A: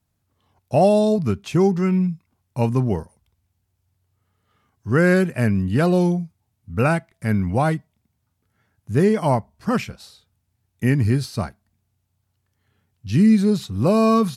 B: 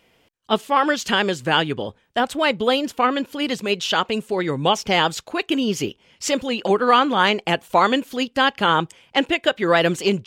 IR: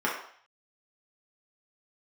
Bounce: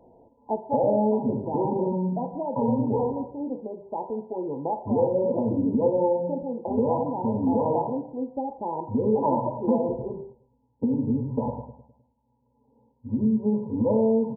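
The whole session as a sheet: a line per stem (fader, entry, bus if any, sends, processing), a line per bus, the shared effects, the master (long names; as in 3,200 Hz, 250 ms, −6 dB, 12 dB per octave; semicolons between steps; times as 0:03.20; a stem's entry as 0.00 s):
+2.5 dB, 0.00 s, send −7.5 dB, echo send −5.5 dB, EQ curve with evenly spaced ripples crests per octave 1, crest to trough 17 dB; brickwall limiter −11 dBFS, peak gain reduction 11 dB; downward compressor, threshold −23 dBFS, peak gain reduction 8.5 dB
−4.5 dB, 0.00 s, send −19.5 dB, no echo send, low-shelf EQ 150 Hz +8.5 dB; multiband upward and downward compressor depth 40%; automatic ducking −8 dB, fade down 1.20 s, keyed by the first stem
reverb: on, RT60 0.55 s, pre-delay 3 ms
echo: repeating echo 103 ms, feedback 46%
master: linear-phase brick-wall low-pass 1,000 Hz; low-shelf EQ 170 Hz −5.5 dB; downward compressor 1.5 to 1, threshold −24 dBFS, peak gain reduction 4.5 dB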